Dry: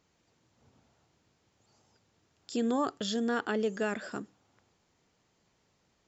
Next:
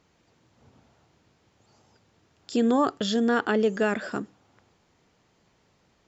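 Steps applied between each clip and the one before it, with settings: treble shelf 6.6 kHz -9.5 dB; trim +7.5 dB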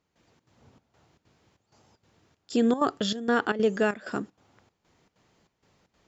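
trance gate "..xxx.xxxx" 192 bpm -12 dB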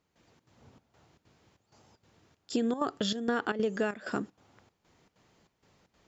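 compression 6:1, threshold -26 dBFS, peak gain reduction 7.5 dB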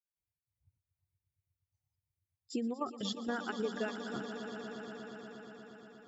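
expander on every frequency bin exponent 2; echo with a slow build-up 119 ms, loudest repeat 5, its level -13 dB; trim -4 dB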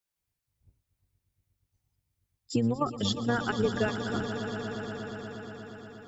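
octave divider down 1 oct, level -4 dB; trim +8 dB

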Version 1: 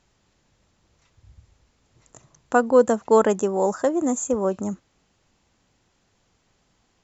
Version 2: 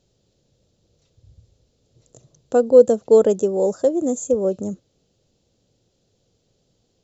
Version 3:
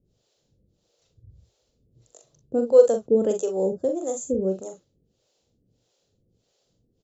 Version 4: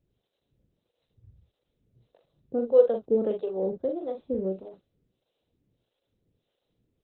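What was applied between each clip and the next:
graphic EQ 125/500/1000/2000/4000 Hz +7/+11/-11/-10/+6 dB; trim -3 dB
harmonic tremolo 1.6 Hz, depth 100%, crossover 430 Hz; early reflections 42 ms -6 dB, 59 ms -17 dB
trim -4.5 dB; Opus 8 kbps 48 kHz

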